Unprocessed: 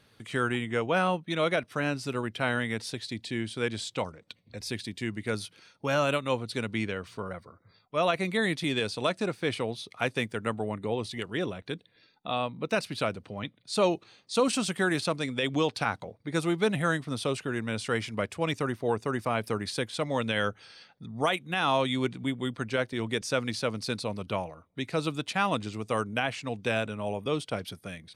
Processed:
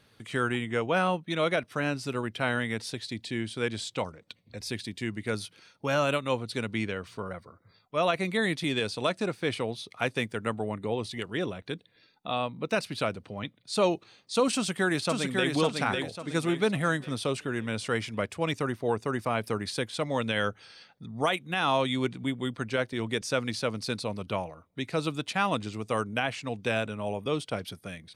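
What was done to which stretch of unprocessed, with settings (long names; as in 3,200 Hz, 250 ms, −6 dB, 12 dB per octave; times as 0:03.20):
0:14.54–0:15.52: delay throw 550 ms, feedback 40%, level −3.5 dB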